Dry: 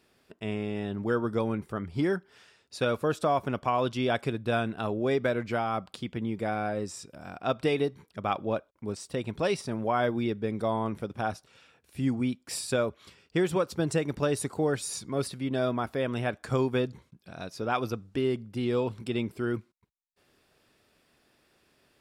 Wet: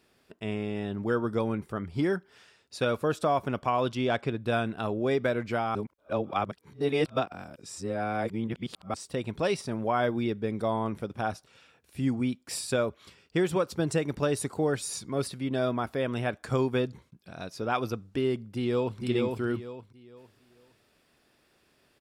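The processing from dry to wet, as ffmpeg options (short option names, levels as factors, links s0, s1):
-filter_complex "[0:a]asettb=1/sr,asplit=3[s0][s1][s2];[s0]atrim=end=3.954[s3];[s1]atrim=start=3.95:end=4.42,asetpts=PTS-STARTPTS,afade=t=in:d=0.004:c=qsin,afade=t=out:st=0.466:d=0.004:c=qsin,adynamicsmooth=sensitivity=3:basefreq=5400[s4];[s2]atrim=start=4.416[s5];[s3][s4]acrossfade=d=0.004:c1=hsin:c2=qsin[s6];[s6][s5]acrossfade=d=0.004:c1=qsin:c2=hsin,asplit=2[s7][s8];[s8]afade=t=in:st=18.55:d=0.01,afade=t=out:st=19:d=0.01,aecho=0:1:460|920|1380|1840:0.707946|0.212384|0.0637151|0.0191145[s9];[s7][s9]amix=inputs=2:normalize=0,asplit=3[s10][s11][s12];[s10]atrim=end=5.752[s13];[s11]atrim=start=5.748:end=8.942,asetpts=PTS-STARTPTS,areverse[s14];[s12]atrim=start=8.938[s15];[s13][s14]acrossfade=d=0.004:c1=hsin:c2=hsin[s16];[s16][s15]acrossfade=d=0.004:c1=hsin:c2=hsin"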